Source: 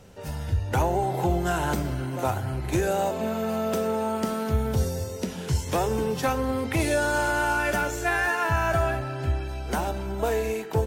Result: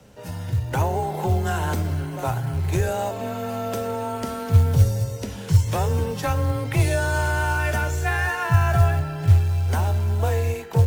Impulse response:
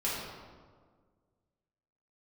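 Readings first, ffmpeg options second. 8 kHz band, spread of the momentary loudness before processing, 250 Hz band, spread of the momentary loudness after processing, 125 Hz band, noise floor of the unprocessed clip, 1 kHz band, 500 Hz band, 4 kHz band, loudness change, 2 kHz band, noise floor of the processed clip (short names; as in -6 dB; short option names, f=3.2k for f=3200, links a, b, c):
+0.5 dB, 6 LU, -1.5 dB, 9 LU, +9.5 dB, -35 dBFS, 0.0 dB, -1.5 dB, +0.5 dB, +3.5 dB, 0.0 dB, -34 dBFS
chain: -af "asubboost=boost=6.5:cutoff=84,acrusher=bits=7:mode=log:mix=0:aa=0.000001,afreqshift=22"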